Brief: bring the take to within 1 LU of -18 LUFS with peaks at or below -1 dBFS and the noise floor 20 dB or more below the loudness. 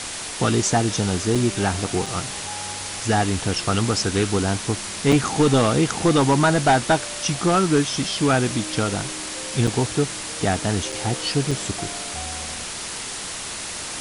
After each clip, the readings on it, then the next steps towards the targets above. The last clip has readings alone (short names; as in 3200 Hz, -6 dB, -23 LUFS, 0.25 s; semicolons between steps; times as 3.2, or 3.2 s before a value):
dropouts 6; longest dropout 4.8 ms; noise floor -32 dBFS; noise floor target -42 dBFS; loudness -22.0 LUFS; peak -7.0 dBFS; loudness target -18.0 LUFS
-> interpolate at 1.35/2.06/5.12/9.67/10.92/11.51, 4.8 ms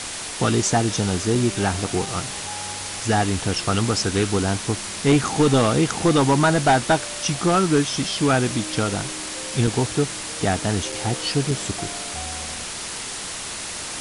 dropouts 0; noise floor -32 dBFS; noise floor target -42 dBFS
-> denoiser 10 dB, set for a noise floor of -32 dBFS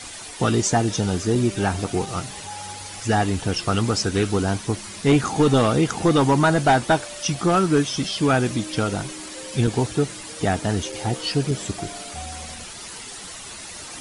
noise floor -37 dBFS; noise floor target -42 dBFS
-> denoiser 6 dB, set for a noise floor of -37 dBFS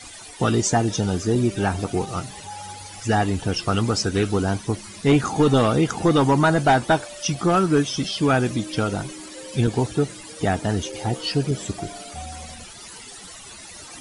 noise floor -41 dBFS; noise floor target -42 dBFS
-> denoiser 6 dB, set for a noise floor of -41 dBFS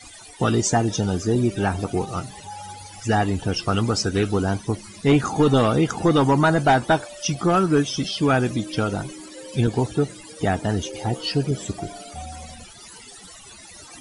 noise floor -44 dBFS; loudness -22.0 LUFS; peak -7.5 dBFS; loudness target -18.0 LUFS
-> gain +4 dB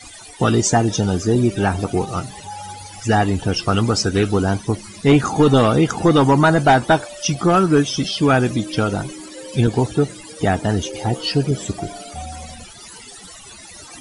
loudness -18.0 LUFS; peak -3.5 dBFS; noise floor -40 dBFS